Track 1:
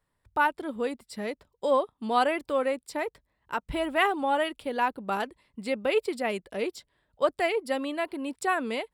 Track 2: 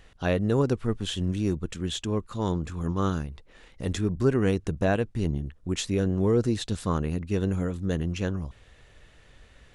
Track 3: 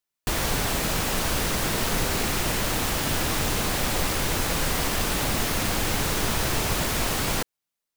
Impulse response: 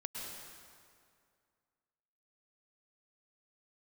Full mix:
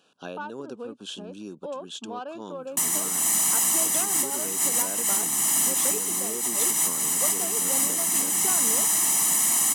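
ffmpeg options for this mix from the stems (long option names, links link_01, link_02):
-filter_complex "[0:a]adynamicsmooth=sensitivity=0.5:basefreq=1700,volume=-2.5dB[link_01];[1:a]volume=-5dB,asplit=2[link_02][link_03];[2:a]lowpass=9200,aecho=1:1:1:0.92,aexciter=amount=6:drive=9.5:freq=6600,adelay=2500,volume=-9dB[link_04];[link_03]apad=whole_len=461566[link_05];[link_04][link_05]sidechaincompress=threshold=-32dB:ratio=8:attack=22:release=128[link_06];[link_01][link_02]amix=inputs=2:normalize=0,asuperstop=centerf=2000:order=8:qfactor=2.7,acompressor=threshold=-32dB:ratio=6,volume=0dB[link_07];[link_06][link_07]amix=inputs=2:normalize=0,highpass=frequency=200:width=0.5412,highpass=frequency=200:width=1.3066,equalizer=frequency=4900:width=0.39:gain=3"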